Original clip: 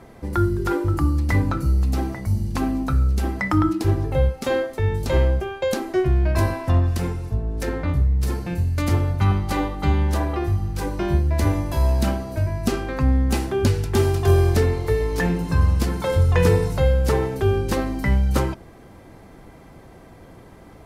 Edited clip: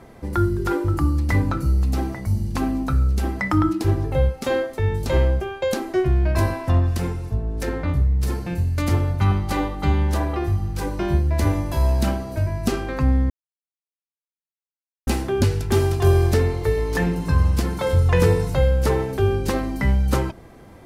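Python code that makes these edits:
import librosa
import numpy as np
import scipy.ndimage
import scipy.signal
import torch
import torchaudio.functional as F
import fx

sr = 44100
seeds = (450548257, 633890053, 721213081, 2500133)

y = fx.edit(x, sr, fx.insert_silence(at_s=13.3, length_s=1.77), tone=tone)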